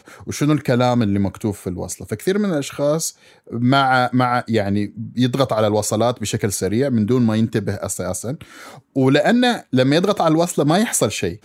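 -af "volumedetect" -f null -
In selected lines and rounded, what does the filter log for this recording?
mean_volume: -18.6 dB
max_volume: -1.1 dB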